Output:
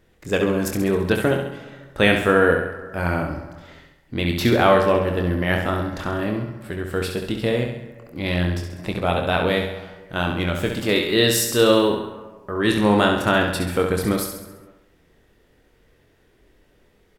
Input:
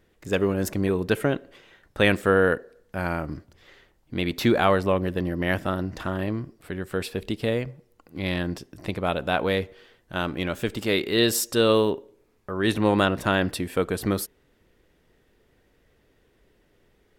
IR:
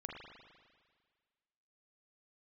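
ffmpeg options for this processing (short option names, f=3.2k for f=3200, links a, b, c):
-filter_complex "[0:a]asplit=2[a][b];[b]adelay=24,volume=-7dB[c];[a][c]amix=inputs=2:normalize=0,aecho=1:1:67|134|201|268|335|402:0.501|0.261|0.136|0.0705|0.0366|0.0191,asplit=2[d][e];[1:a]atrim=start_sample=2205,afade=t=out:st=0.38:d=0.01,atrim=end_sample=17199,asetrate=24696,aresample=44100[f];[e][f]afir=irnorm=-1:irlink=0,volume=-12.5dB[g];[d][g]amix=inputs=2:normalize=0,volume=1dB"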